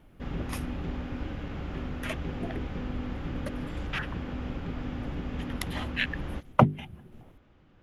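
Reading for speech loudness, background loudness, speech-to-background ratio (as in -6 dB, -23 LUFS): -33.0 LUFS, -36.5 LUFS, 3.5 dB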